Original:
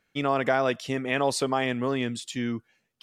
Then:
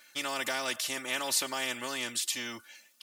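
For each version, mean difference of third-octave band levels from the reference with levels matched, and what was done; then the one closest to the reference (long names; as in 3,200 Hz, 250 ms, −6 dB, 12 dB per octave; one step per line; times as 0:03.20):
12.5 dB: high-pass filter 990 Hz 6 dB per octave
high-shelf EQ 3,400 Hz +11 dB
comb filter 3.4 ms, depth 84%
every bin compressed towards the loudest bin 2 to 1
level −7 dB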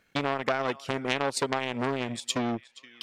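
5.5 dB: transient designer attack +7 dB, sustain −12 dB
downward compressor 5 to 1, threshold −25 dBFS, peak gain reduction 9.5 dB
feedback echo with a band-pass in the loop 474 ms, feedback 51%, band-pass 2,900 Hz, level −18 dB
saturating transformer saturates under 2,400 Hz
level +5.5 dB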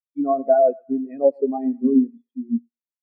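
18.5 dB: mains-hum notches 60/120/180/240/300 Hz
dynamic equaliser 260 Hz, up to +4 dB, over −38 dBFS, Q 1
on a send: feedback echo with a high-pass in the loop 111 ms, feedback 80%, high-pass 470 Hz, level −6 dB
on the sum: every bin expanded away from the loudest bin 4 to 1
level +3.5 dB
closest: second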